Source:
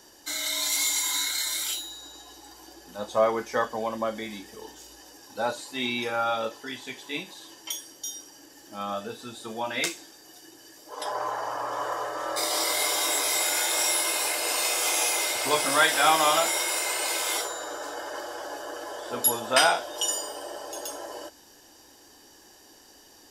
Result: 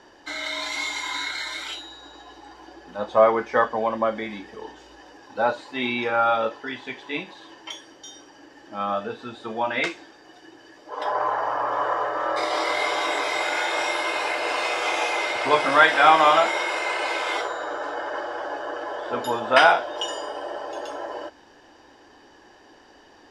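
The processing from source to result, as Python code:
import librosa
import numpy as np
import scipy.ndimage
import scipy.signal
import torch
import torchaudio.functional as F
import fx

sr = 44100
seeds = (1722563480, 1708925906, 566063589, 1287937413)

y = scipy.signal.sosfilt(scipy.signal.butter(2, 2300.0, 'lowpass', fs=sr, output='sos'), x)
y = fx.low_shelf(y, sr, hz=400.0, db=-5.0)
y = y * librosa.db_to_amplitude(7.5)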